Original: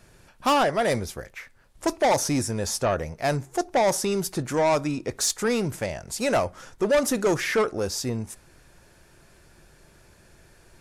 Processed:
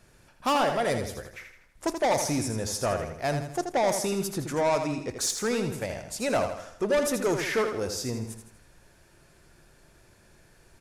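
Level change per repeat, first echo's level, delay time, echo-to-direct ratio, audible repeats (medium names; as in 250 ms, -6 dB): -7.0 dB, -7.5 dB, 81 ms, -6.5 dB, 4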